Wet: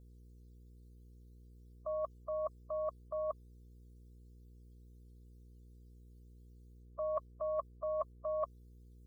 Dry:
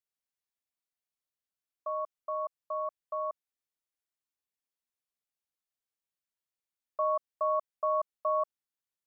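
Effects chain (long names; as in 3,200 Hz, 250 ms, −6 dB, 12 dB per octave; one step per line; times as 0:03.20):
spectral dynamics exaggerated over time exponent 3
low-shelf EQ 440 Hz −5 dB
notch filter 1,100 Hz, Q 12
in parallel at −1.5 dB: output level in coarse steps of 18 dB
on the sum: brickwall limiter −32 dBFS, peak gain reduction 8 dB
reversed playback
downward compressor 10 to 1, threshold −50 dBFS, peak gain reduction 14.5 dB
reversed playback
hum with harmonics 60 Hz, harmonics 8, −73 dBFS −8 dB per octave
level +15.5 dB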